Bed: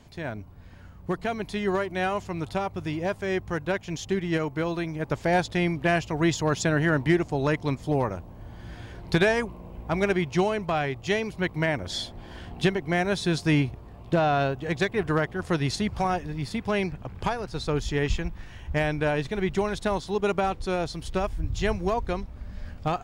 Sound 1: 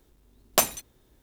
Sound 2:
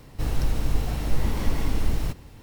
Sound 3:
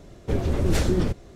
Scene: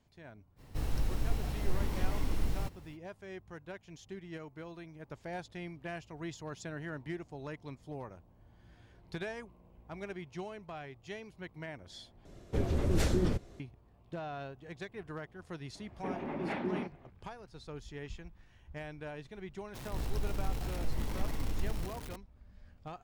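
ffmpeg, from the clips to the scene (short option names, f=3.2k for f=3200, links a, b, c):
-filter_complex "[2:a]asplit=2[a][b];[3:a]asplit=2[c][d];[0:a]volume=-18.5dB[e];[d]highpass=f=200:w=0.5412,highpass=f=200:w=1.3066,equalizer=f=330:t=q:w=4:g=-4,equalizer=f=480:t=q:w=4:g=-9,equalizer=f=860:t=q:w=4:g=7,equalizer=f=1.4k:t=q:w=4:g=-3,equalizer=f=2.3k:t=q:w=4:g=3,lowpass=f=2.5k:w=0.5412,lowpass=f=2.5k:w=1.3066[f];[b]aeval=exprs='val(0)+0.5*0.0376*sgn(val(0))':c=same[g];[e]asplit=2[h][i];[h]atrim=end=12.254[j];[c]atrim=end=1.35,asetpts=PTS-STARTPTS,volume=-7dB[k];[i]atrim=start=13.596[l];[a]atrim=end=2.42,asetpts=PTS-STARTPTS,volume=-8.5dB,afade=t=in:d=0.05,afade=t=out:st=2.37:d=0.05,adelay=560[m];[f]atrim=end=1.35,asetpts=PTS-STARTPTS,volume=-7dB,afade=t=in:d=0.004:c=hsin,afade=t=out:st=1.346:d=0.004:c=hsin,adelay=15750[n];[g]atrim=end=2.42,asetpts=PTS-STARTPTS,volume=-12dB,afade=t=in:d=0.004:c=hsin,afade=t=out:st=2.416:d=0.004:c=hsin,adelay=19740[o];[j][k]acrossfade=d=0.004:c1=hsin:c2=hsin[p];[p][l]acrossfade=d=0.004:c1=hsin:c2=hsin[q];[q][m][n][o]amix=inputs=4:normalize=0"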